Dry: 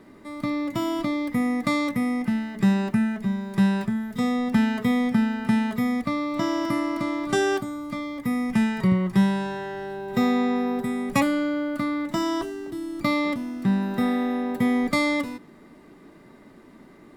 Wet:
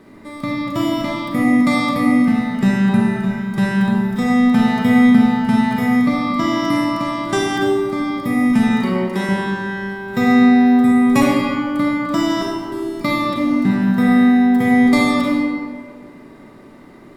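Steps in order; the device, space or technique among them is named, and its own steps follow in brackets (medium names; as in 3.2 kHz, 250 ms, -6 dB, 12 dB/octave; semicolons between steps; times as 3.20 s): 8.70–9.29 s: high-pass 250 Hz 24 dB/octave; stairwell (reverberation RT60 1.9 s, pre-delay 33 ms, DRR -2 dB); trim +3.5 dB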